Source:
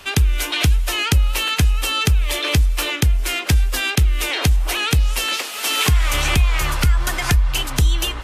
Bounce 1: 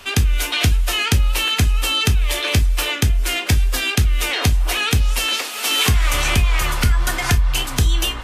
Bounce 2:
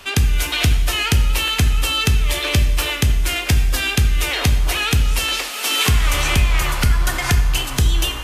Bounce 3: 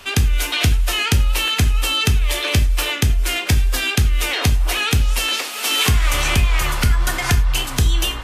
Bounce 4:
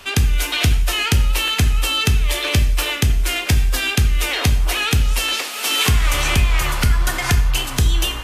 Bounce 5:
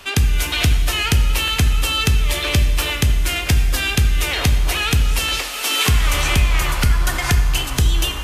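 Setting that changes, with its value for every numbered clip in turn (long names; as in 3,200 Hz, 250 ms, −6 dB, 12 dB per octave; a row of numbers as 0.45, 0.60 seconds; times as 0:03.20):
reverb whose tail is shaped and stops, gate: 80, 320, 130, 210, 470 milliseconds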